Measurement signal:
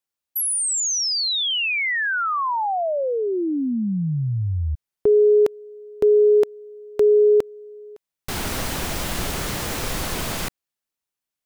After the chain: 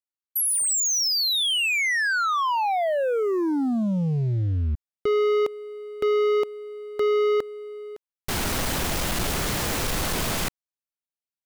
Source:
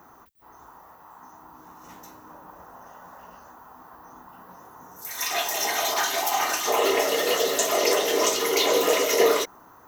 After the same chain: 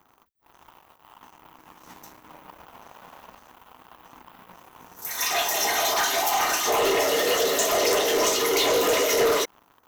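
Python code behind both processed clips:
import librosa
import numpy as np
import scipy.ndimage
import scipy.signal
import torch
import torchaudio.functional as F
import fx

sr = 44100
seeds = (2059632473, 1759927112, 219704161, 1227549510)

y = fx.leveller(x, sr, passes=3)
y = y * librosa.db_to_amplitude(-8.0)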